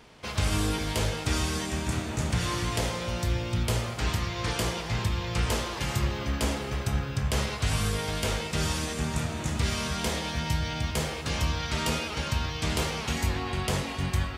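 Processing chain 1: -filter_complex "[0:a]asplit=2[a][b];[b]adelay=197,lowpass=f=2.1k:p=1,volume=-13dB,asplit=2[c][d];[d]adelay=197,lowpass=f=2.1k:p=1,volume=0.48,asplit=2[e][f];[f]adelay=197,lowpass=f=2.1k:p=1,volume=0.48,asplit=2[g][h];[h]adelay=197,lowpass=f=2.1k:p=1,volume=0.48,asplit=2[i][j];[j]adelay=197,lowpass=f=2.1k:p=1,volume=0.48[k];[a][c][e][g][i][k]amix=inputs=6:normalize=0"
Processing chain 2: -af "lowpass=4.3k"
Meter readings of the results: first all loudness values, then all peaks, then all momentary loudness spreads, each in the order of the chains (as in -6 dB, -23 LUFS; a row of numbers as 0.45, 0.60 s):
-29.0, -30.0 LUFS; -13.5, -15.0 dBFS; 2, 2 LU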